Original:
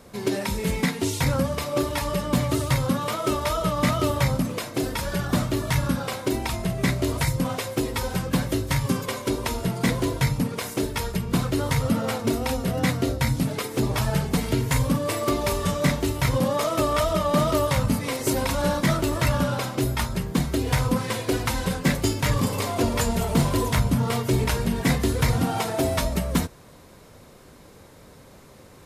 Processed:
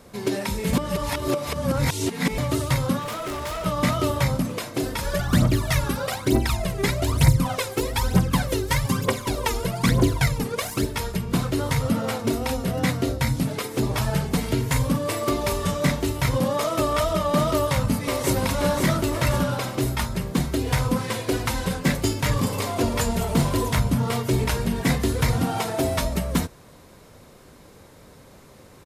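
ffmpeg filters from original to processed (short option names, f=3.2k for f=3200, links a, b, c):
-filter_complex "[0:a]asettb=1/sr,asplit=3[a][b][c];[a]atrim=end=2.994[d];[b]atrim=start=2.99:end=3.66,asetpts=PTS-STARTPTS,afade=t=in:d=0.004:c=qsin,afade=t=out:st=0.666:d=0.004:c=qsin,asoftclip=type=hard:threshold=-27.5dB[e];[c]atrim=start=3.656[f];[d][e]acrossfade=d=0.004:c1=hsin:c2=qsin[g];[g][f]acrossfade=d=0.004:c1=qsin:c2=hsin,asplit=3[h][i][j];[h]afade=t=out:st=5.03:d=0.02[k];[i]aphaser=in_gain=1:out_gain=1:delay=2.6:decay=0.67:speed=1.1:type=triangular,afade=t=in:st=5.03:d=0.02,afade=t=out:st=10.84:d=0.02[l];[j]afade=t=in:st=10.84:d=0.02[m];[k][l][m]amix=inputs=3:normalize=0,asplit=2[n][o];[o]afade=t=in:st=17.54:d=0.01,afade=t=out:st=18.36:d=0.01,aecho=0:1:530|1060|1590|2120|2650|3180|3710|4240:0.501187|0.300712|0.180427|0.108256|0.0649539|0.0389723|0.0233834|0.01403[p];[n][p]amix=inputs=2:normalize=0,asplit=3[q][r][s];[q]atrim=end=0.732[t];[r]atrim=start=0.728:end=2.382,asetpts=PTS-STARTPTS,areverse[u];[s]atrim=start=2.378[v];[t][u]acrossfade=d=0.004:c1=hsin:c2=hsin[w];[w][v]acrossfade=d=0.004:c1=hsin:c2=hsin"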